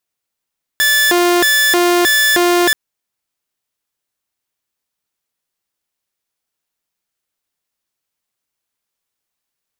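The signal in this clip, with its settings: siren hi-lo 351–1740 Hz 1.6/s saw -7.5 dBFS 1.93 s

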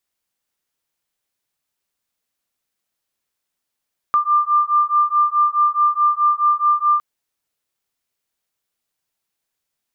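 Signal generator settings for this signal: beating tones 1190 Hz, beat 4.7 Hz, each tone -16.5 dBFS 2.86 s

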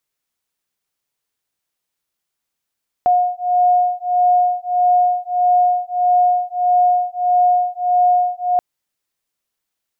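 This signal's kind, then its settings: beating tones 718 Hz, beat 1.6 Hz, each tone -15.5 dBFS 5.53 s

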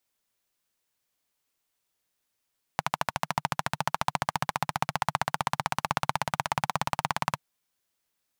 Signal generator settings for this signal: single-cylinder engine model, changing speed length 4.60 s, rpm 1600, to 2100, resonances 150/870 Hz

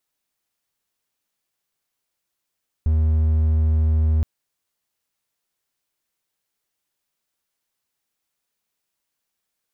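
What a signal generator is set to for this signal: tone triangle 78.4 Hz -13 dBFS 1.37 s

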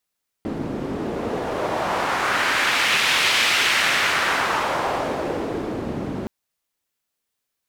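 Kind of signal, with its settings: wind-like swept noise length 5.82 s, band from 270 Hz, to 2600 Hz, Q 1.3, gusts 1, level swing 9 dB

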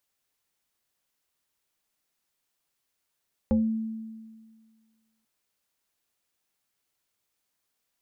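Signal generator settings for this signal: FM tone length 1.74 s, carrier 222 Hz, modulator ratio 1.36, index 1, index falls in 0.30 s exponential, decay 1.75 s, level -18 dB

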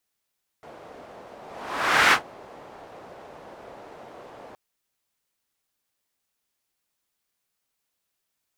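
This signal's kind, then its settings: whoosh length 3.92 s, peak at 1.49, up 0.76 s, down 0.12 s, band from 630 Hz, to 1700 Hz, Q 1.5, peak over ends 27.5 dB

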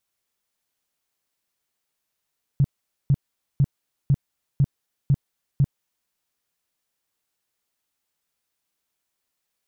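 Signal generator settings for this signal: tone bursts 139 Hz, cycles 6, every 0.50 s, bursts 7, -13.5 dBFS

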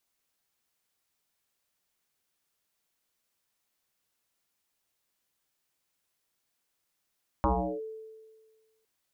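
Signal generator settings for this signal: FM tone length 1.41 s, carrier 440 Hz, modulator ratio 0.29, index 5.5, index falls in 0.37 s linear, decay 1.57 s, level -20.5 dB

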